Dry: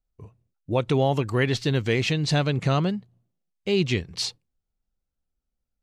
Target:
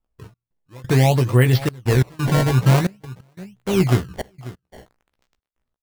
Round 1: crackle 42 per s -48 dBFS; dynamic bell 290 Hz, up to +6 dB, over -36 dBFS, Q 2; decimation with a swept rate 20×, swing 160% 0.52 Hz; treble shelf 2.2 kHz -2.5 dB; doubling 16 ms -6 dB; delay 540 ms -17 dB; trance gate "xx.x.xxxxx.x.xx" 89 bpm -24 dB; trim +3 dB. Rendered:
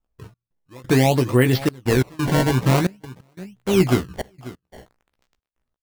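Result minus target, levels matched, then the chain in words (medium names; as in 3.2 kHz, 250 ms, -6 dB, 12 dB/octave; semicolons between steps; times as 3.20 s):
250 Hz band +3.0 dB
crackle 42 per s -48 dBFS; dynamic bell 120 Hz, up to +6 dB, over -36 dBFS, Q 2; decimation with a swept rate 20×, swing 160% 0.52 Hz; treble shelf 2.2 kHz -2.5 dB; doubling 16 ms -6 dB; delay 540 ms -17 dB; trance gate "xx.x.xxxxx.x.xx" 89 bpm -24 dB; trim +3 dB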